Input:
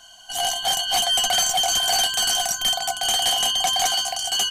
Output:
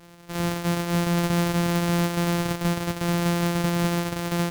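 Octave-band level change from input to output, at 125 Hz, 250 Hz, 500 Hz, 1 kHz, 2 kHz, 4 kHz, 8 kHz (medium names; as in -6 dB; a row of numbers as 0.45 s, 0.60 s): +24.5 dB, +23.5 dB, +3.5 dB, -5.5 dB, -2.0 dB, -17.0 dB, -15.0 dB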